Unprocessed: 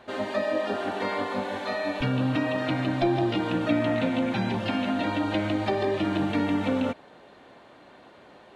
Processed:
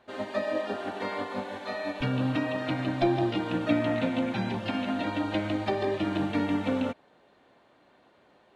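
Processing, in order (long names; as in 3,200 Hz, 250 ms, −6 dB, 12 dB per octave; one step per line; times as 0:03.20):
expander for the loud parts 1.5 to 1, over −40 dBFS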